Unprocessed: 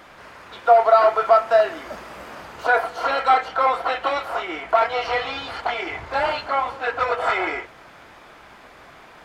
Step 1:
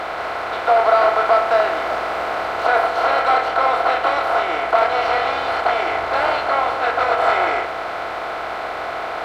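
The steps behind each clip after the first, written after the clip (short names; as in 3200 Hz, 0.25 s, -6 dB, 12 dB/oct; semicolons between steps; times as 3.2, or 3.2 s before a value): per-bin compression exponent 0.4; gain -4 dB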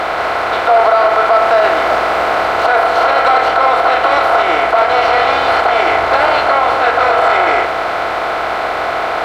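maximiser +10 dB; gain -1 dB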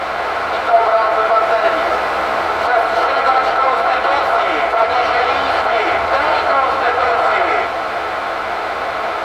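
ensemble effect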